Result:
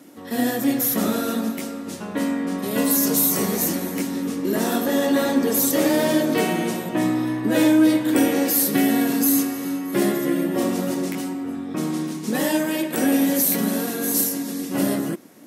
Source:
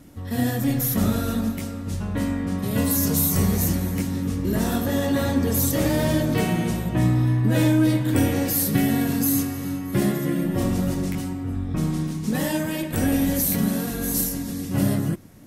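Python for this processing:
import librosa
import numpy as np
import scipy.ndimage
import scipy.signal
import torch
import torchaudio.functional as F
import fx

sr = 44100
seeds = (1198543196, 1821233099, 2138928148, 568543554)

y = fx.ladder_highpass(x, sr, hz=210.0, resonance_pct=20)
y = y * librosa.db_to_amplitude(8.5)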